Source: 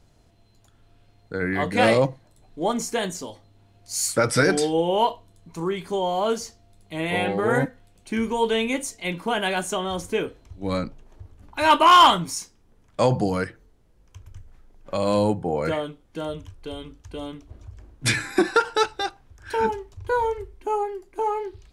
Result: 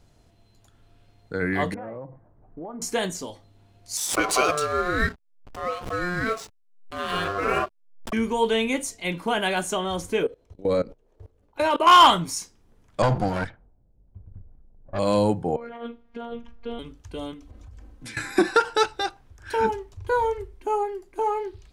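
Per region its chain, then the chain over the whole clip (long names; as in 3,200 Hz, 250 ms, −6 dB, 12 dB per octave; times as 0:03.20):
0:01.74–0:02.82: low-pass filter 1,400 Hz 24 dB per octave + downward compressor 10 to 1, threshold −33 dBFS
0:03.97–0:08.13: ring modulation 890 Hz + slack as between gear wheels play −33.5 dBFS + background raised ahead of every attack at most 90 dB per second
0:10.23–0:11.87: parametric band 480 Hz +14.5 dB 0.74 octaves + output level in coarse steps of 21 dB
0:13.02–0:14.99: lower of the sound and its delayed copy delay 1.3 ms + high-shelf EQ 5,000 Hz −7 dB + low-pass that shuts in the quiet parts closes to 360 Hz, open at −21.5 dBFS
0:15.56–0:16.79: low-pass filter 2,500 Hz + compressor whose output falls as the input rises −32 dBFS + phases set to zero 234 Hz
0:17.33–0:18.17: comb filter 3.9 ms, depth 57% + downward compressor 4 to 1, threshold −40 dBFS
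whole clip: no processing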